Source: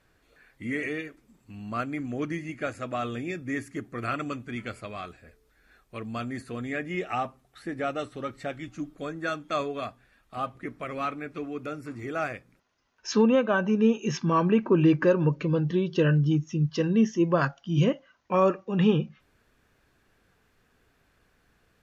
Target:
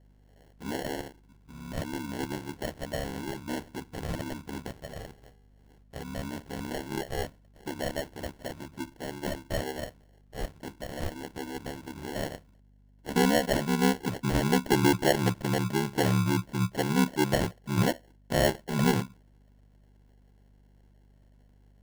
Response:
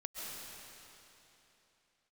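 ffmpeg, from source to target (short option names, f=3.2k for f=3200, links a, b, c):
-af "aeval=exprs='val(0)*sin(2*PI*35*n/s)':c=same,acrusher=samples=36:mix=1:aa=0.000001,aeval=exprs='val(0)+0.00126*(sin(2*PI*50*n/s)+sin(2*PI*2*50*n/s)/2+sin(2*PI*3*50*n/s)/3+sin(2*PI*4*50*n/s)/4+sin(2*PI*5*50*n/s)/5)':c=same"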